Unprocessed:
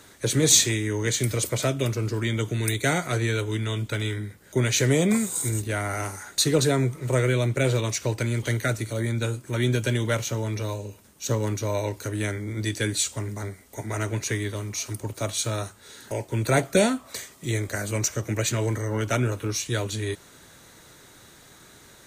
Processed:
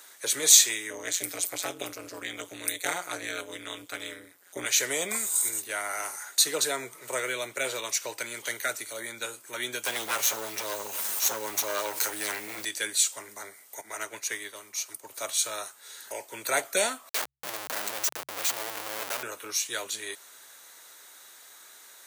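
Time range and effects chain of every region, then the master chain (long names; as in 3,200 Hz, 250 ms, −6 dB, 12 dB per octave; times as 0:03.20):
0:00.90–0:04.66: low-shelf EQ 210 Hz +9 dB + comb filter 7.1 ms, depth 37% + amplitude modulation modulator 180 Hz, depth 100%
0:09.85–0:12.65: lower of the sound and its delayed copy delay 9.4 ms + log-companded quantiser 6 bits + envelope flattener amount 70%
0:13.81–0:15.11: high-pass filter 60 Hz + expander for the loud parts, over −40 dBFS
0:17.09–0:19.23: dynamic equaliser 1,600 Hz, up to −5 dB, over −44 dBFS, Q 1.7 + comparator with hysteresis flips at −33 dBFS + hum removal 67.24 Hz, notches 2
whole clip: high-pass filter 720 Hz 12 dB per octave; high-shelf EQ 10,000 Hz +11 dB; level −1.5 dB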